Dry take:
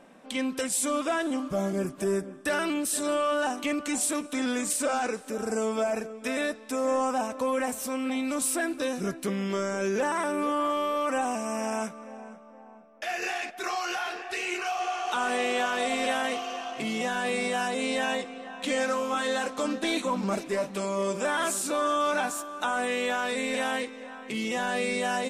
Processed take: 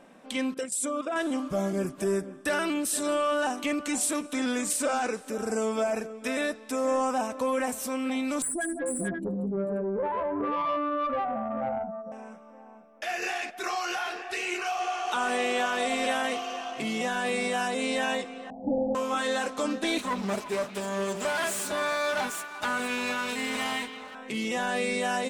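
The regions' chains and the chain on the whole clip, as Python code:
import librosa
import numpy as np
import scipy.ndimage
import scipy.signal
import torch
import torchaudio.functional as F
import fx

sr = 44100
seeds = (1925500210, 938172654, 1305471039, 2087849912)

y = fx.chain(x, sr, fx.envelope_sharpen(power=1.5),
    fx.level_steps(step_db=10),
    fx.highpass(hz=65.0, slope=12), at=(0.54, 1.16))
y = fx.chain(y, sr, fx.spec_expand(power=3.5),
    fx.echo_multitap(ms=(76, 183, 243, 439, 453, 532), db=(-17.0, -8.5, -19.0, -8.0, -8.5, -8.0)),
    fx.tube_stage(drive_db=22.0, bias=0.35), at=(8.42, 12.12))
y = fx.chain(y, sr, fx.halfwave_hold(),
    fx.cheby_ripple(hz=870.0, ripple_db=6), at=(18.5, 18.95))
y = fx.chain(y, sr, fx.lower_of_two(delay_ms=4.8),
    fx.highpass(hz=170.0, slope=6),
    fx.echo_stepped(ms=173, hz=3100.0, octaves=-1.4, feedback_pct=70, wet_db=-9), at=(19.98, 24.15))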